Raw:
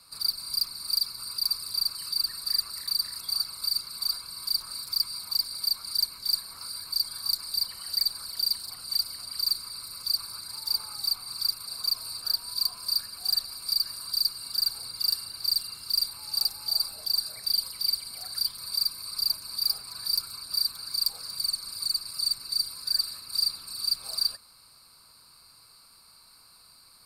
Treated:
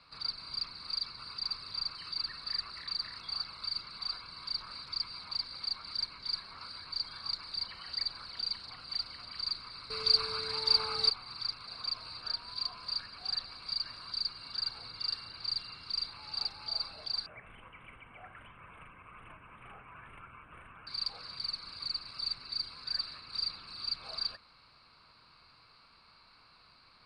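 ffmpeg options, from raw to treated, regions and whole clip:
-filter_complex "[0:a]asettb=1/sr,asplit=3[s0][s1][s2];[s0]atrim=end=9.904[s3];[s1]atrim=start=9.9:end=11.1,asetpts=PTS-STARTPTS,afade=t=in:d=0.004:c=qsin,afade=t=out:st=1.196:d=0.004:c=qsin,equalizer=f=7800:w=0.36:g=4.5,acontrast=87,aeval=exprs='val(0)+0.00708*sin(2*PI*440*n/s)':c=same[s4];[s2]atrim=start=11.096[s5];[s3][s4]acrossfade=d=0.004:c1=hsin:c2=qsin[s6];[s6][s5]acrossfade=d=0.004:c1=qsin:c2=hsin,asettb=1/sr,asplit=3[s7][s8][s9];[s7]atrim=end=17.264[s10];[s8]atrim=start=17.26:end=20.87,asetpts=PTS-STARTPTS,afade=t=in:d=0.004:c=qsin,afade=t=out:st=3.606:d=0.004:c=qsin,adynamicsmooth=sensitivity=1.5:basefreq=4400,asuperstop=centerf=5100:order=12:qfactor=0.95[s11];[s9]atrim=start=20.866[s12];[s10][s11]acrossfade=d=0.004:c1=hsin:c2=qsin[s13];[s13][s12]acrossfade=d=0.004:c1=qsin:c2=hsin,lowpass=f=3000:w=0.5412,lowpass=f=3000:w=1.3066,aemphasis=mode=production:type=75kf"

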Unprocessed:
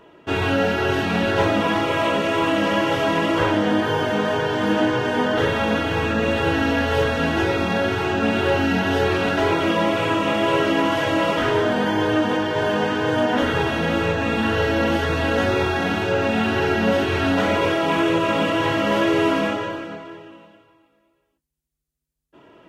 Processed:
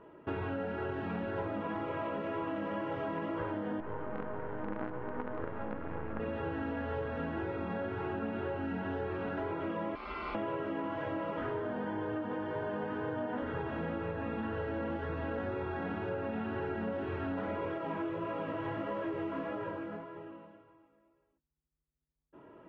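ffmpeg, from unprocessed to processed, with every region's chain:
-filter_complex "[0:a]asettb=1/sr,asplit=3[s0][s1][s2];[s0]atrim=end=3.804[s3];[s1]atrim=start=3.8:end=6.2,asetpts=PTS-STARTPTS,afade=t=in:d=0.004:c=qsin,afade=t=out:st=2.396:d=0.004:c=qsin,acrusher=bits=3:dc=4:mix=0:aa=0.000001,lowpass=1800[s4];[s2]atrim=start=6.196[s5];[s3][s4]acrossfade=d=0.004:c1=hsin:c2=qsin[s6];[s6][s5]acrossfade=d=0.004:c1=qsin:c2=hsin,asettb=1/sr,asplit=3[s7][s8][s9];[s7]atrim=end=9.954[s10];[s8]atrim=start=9.95:end=10.35,asetpts=PTS-STARTPTS,afade=t=in:d=0.004:c=qsin,afade=t=out:st=0.396:d=0.004:c=qsin,acrossover=split=300|1100[s11][s12][s13];[s11]acompressor=threshold=0.0141:ratio=4[s14];[s12]acompressor=threshold=0.0501:ratio=4[s15];[s13]acompressor=threshold=0.0447:ratio=4[s16];[s14][s15][s16]amix=inputs=3:normalize=0,aeval=exprs='val(0)*sin(2*PI*1700*n/s)':c=same,equalizer=f=1800:t=o:w=0.43:g=-6[s17];[s9]atrim=start=10.346[s18];[s10][s17]acrossfade=d=0.004:c1=hsin:c2=qsin[s19];[s19][s18]acrossfade=d=0.004:c1=qsin:c2=hsin,asettb=1/sr,asplit=3[s20][s21][s22];[s20]atrim=end=17.784[s23];[s21]atrim=start=17.78:end=20.16,asetpts=PTS-STARTPTS,afade=t=in:d=0.004:c=qsin,afade=t=out:st=2.376:d=0.004:c=qsin,lowpass=9000,flanger=delay=16:depth=4.9:speed=1.7,acrusher=bits=5:mode=log:mix=0:aa=0.000001[s24];[s22]atrim=start=20.156[s25];[s23][s24]acrossfade=d=0.004:c1=hsin:c2=qsin[s26];[s26][s25]acrossfade=d=0.004:c1=qsin:c2=hsin,lowpass=1500,bandreject=f=710:w=12,acompressor=threshold=0.0355:ratio=6,volume=0.562"

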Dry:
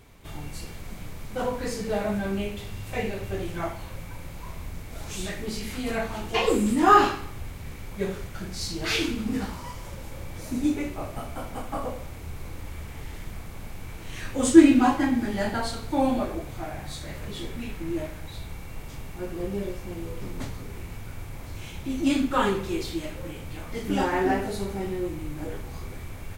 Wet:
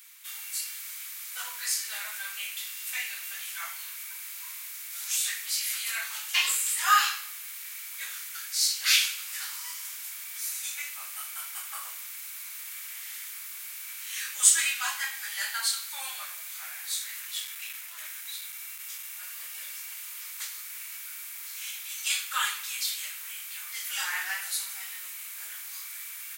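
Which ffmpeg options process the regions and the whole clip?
-filter_complex "[0:a]asettb=1/sr,asplit=3[s0][s1][s2];[s0]atrim=end=16.944[s3];[s1]atrim=start=16.94:end=19.23,asetpts=PTS-STARTPTS,afade=t=in:d=0.004:c=qsin,afade=t=out:st=2.286:d=0.004:c=qsin,bandreject=f=4500:w=19,asoftclip=type=hard:threshold=0.0299[s4];[s2]atrim=start=19.226[s5];[s3][s4]acrossfade=d=0.004:c1=hsin:c2=qsin[s6];[s6][s5]acrossfade=d=0.004:c1=qsin:c2=hsin,highpass=f=1400:w=0.5412,highpass=f=1400:w=1.3066,aemphasis=mode=production:type=75kf"

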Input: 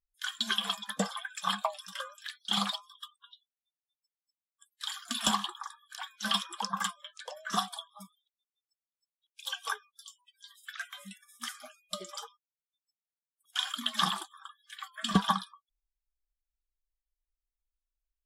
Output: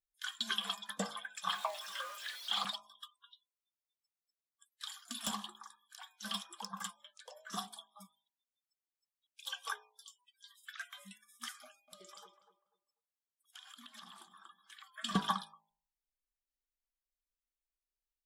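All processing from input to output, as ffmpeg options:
-filter_complex "[0:a]asettb=1/sr,asplit=3[s0][s1][s2];[s0]atrim=end=1.494[s3];[s1]atrim=start=1.49:end=2.65,asetpts=PTS-STARTPTS,afade=t=in:d=0.004:c=qsin,afade=t=out:st=1.156:d=0.004:c=qsin,aeval=exprs='val(0)+0.5*0.0141*sgn(val(0))':c=same,highpass=530,acrossover=split=5500[s4][s5];[s5]acompressor=threshold=0.00501:ratio=4:attack=1:release=60[s6];[s4][s6]amix=inputs=2:normalize=0[s7];[s2]atrim=start=2.646[s8];[s3][s7]acrossfade=d=0.004:c1=hsin:c2=qsin[s9];[s9][s8]acrossfade=d=0.004:c1=qsin:c2=hsin,asettb=1/sr,asplit=3[s10][s11][s12];[s10]atrim=end=4.874[s13];[s11]atrim=start=4.87:end=7.96,asetpts=PTS-STARTPTS,afade=t=in:d=0.004:c=qsin,afade=t=out:st=3.086:d=0.004:c=qsin,equalizer=f=1600:w=0.38:g=-6.5,aeval=exprs='0.0841*(abs(mod(val(0)/0.0841+3,4)-2)-1)':c=same[s14];[s12]atrim=start=7.956[s15];[s13][s14]acrossfade=d=0.004:c1=hsin:c2=qsin[s16];[s16][s15]acrossfade=d=0.004:c1=qsin:c2=hsin,asettb=1/sr,asplit=3[s17][s18][s19];[s17]atrim=end=11.634[s20];[s18]atrim=start=11.63:end=14.94,asetpts=PTS-STARTPTS,afade=t=in:d=0.004:c=qsin,afade=t=out:st=3.306:d=0.004:c=qsin,acompressor=threshold=0.00631:ratio=12:attack=3.2:release=140:knee=1:detection=peak,asplit=2[s21][s22];[s22]adelay=246,lowpass=f=980:p=1,volume=0.355,asplit=2[s23][s24];[s24]adelay=246,lowpass=f=980:p=1,volume=0.28,asplit=2[s25][s26];[s26]adelay=246,lowpass=f=980:p=1,volume=0.28[s27];[s21][s23][s25][s27]amix=inputs=4:normalize=0,atrim=end_sample=145971[s28];[s19]atrim=start=14.936[s29];[s20][s28]acrossfade=d=0.004:c1=hsin:c2=qsin[s30];[s30][s29]acrossfade=d=0.004:c1=qsin:c2=hsin,lowshelf=f=130:g=-6.5,bandreject=f=53.71:t=h:w=4,bandreject=f=107.42:t=h:w=4,bandreject=f=161.13:t=h:w=4,bandreject=f=214.84:t=h:w=4,bandreject=f=268.55:t=h:w=4,bandreject=f=322.26:t=h:w=4,bandreject=f=375.97:t=h:w=4,bandreject=f=429.68:t=h:w=4,bandreject=f=483.39:t=h:w=4,bandreject=f=537.1:t=h:w=4,bandreject=f=590.81:t=h:w=4,bandreject=f=644.52:t=h:w=4,bandreject=f=698.23:t=h:w=4,bandreject=f=751.94:t=h:w=4,bandreject=f=805.65:t=h:w=4,bandreject=f=859.36:t=h:w=4,bandreject=f=913.07:t=h:w=4,bandreject=f=966.78:t=h:w=4,bandreject=f=1020.49:t=h:w=4,volume=0.531"

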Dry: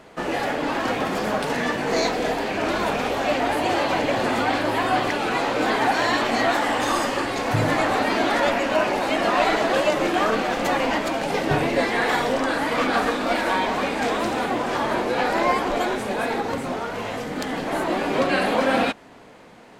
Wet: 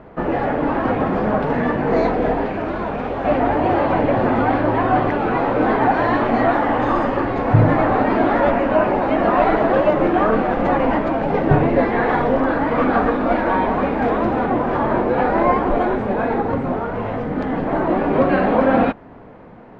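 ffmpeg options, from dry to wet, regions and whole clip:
-filter_complex "[0:a]asettb=1/sr,asplit=3[s0][s1][s2];[s0]atrim=end=2.454[s3];[s1]atrim=start=2.45:end=3.25,asetpts=PTS-STARTPTS,afade=t=in:d=0.004:c=qsin,afade=t=out:st=0.796:d=0.004:c=qsin,highshelf=f=4400:g=9.5,acrossover=split=150|4800[s4][s5][s6];[s4]acompressor=threshold=0.00562:ratio=4[s7];[s5]acompressor=threshold=0.0501:ratio=4[s8];[s6]acompressor=threshold=0.00501:ratio=4[s9];[s7][s8][s9]amix=inputs=3:normalize=0[s10];[s2]atrim=start=3.246[s11];[s3][s10]acrossfade=d=0.004:c1=hsin:c2=qsin[s12];[s12][s11]acrossfade=d=0.004:c1=qsin:c2=hsin,lowpass=1400,lowshelf=f=160:g=9.5,volume=1.68"

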